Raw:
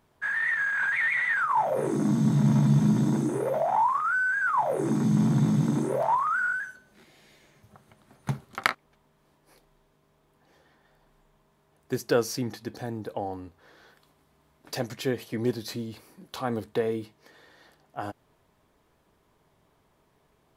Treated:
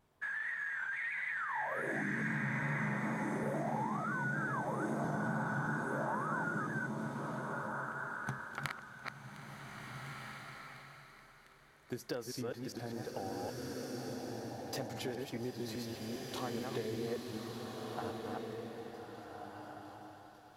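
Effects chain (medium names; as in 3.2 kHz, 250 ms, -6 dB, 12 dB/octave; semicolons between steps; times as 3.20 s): chunks repeated in reverse 202 ms, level -3.5 dB; compression, threshold -30 dBFS, peak gain reduction 15 dB; on a send: thinning echo 702 ms, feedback 79%, high-pass 830 Hz, level -18 dB; on the sum: wow and flutter 53 cents; swelling reverb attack 1640 ms, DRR 0.5 dB; trim -7 dB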